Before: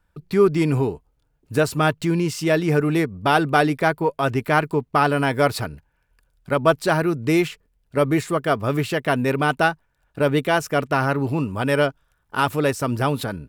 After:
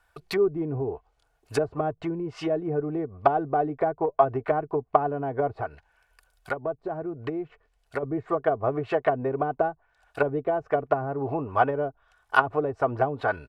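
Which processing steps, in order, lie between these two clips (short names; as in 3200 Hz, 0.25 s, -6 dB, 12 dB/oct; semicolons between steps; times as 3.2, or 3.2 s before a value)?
treble ducked by the level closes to 310 Hz, closed at -16.5 dBFS; resonant low shelf 440 Hz -12 dB, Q 1.5; comb 2.7 ms, depth 49%; 5.47–8.03 compressor 2:1, threshold -36 dBFS, peak gain reduction 8.5 dB; gain +5 dB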